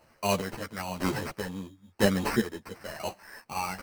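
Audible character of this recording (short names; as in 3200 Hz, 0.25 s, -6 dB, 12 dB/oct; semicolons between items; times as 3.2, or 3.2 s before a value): a quantiser's noise floor 12-bit, dither triangular; chopped level 1 Hz, depth 65%, duty 40%; aliases and images of a low sample rate 3500 Hz, jitter 0%; a shimmering, thickened sound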